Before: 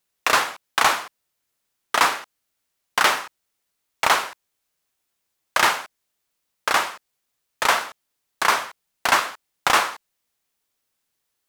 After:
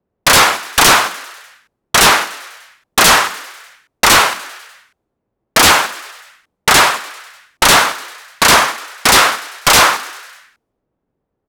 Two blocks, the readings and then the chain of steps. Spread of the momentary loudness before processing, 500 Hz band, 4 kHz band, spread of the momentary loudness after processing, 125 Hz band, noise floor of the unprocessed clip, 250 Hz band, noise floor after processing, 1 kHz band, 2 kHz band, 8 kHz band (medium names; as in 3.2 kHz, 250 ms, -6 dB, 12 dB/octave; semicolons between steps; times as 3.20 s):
12 LU, +11.0 dB, +14.0 dB, 14 LU, +20.0 dB, -77 dBFS, +15.5 dB, -75 dBFS, +9.0 dB, +10.5 dB, +16.0 dB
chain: frequency shift +15 Hz; sine folder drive 18 dB, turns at -1 dBFS; level-controlled noise filter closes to 440 Hz, open at -18 dBFS; on a send: frequency-shifting echo 99 ms, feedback 63%, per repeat +84 Hz, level -17.5 dB; on the sum: trim -3 dB